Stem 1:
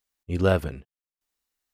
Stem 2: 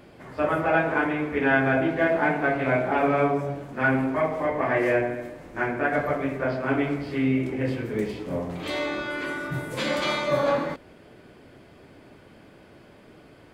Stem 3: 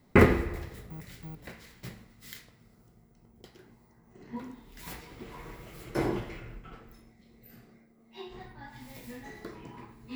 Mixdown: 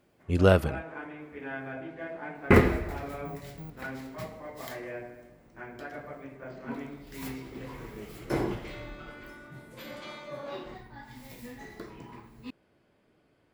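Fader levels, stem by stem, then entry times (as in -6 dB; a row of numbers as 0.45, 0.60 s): +1.0, -17.0, 0.0 dB; 0.00, 0.00, 2.35 s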